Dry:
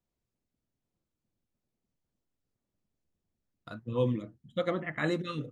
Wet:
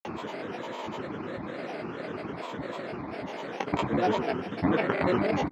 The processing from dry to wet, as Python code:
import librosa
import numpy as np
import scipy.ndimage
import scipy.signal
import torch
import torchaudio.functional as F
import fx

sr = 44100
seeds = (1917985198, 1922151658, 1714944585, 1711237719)

y = fx.bin_compress(x, sr, power=0.2)
y = scipy.signal.sosfilt(scipy.signal.butter(2, 220.0, 'highpass', fs=sr, output='sos'), y)
y = fx.granulator(y, sr, seeds[0], grain_ms=100.0, per_s=20.0, spray_ms=100.0, spread_st=12)
y = fx.lowpass(y, sr, hz=2500.0, slope=6)
y = y * 10.0 ** (1.5 / 20.0)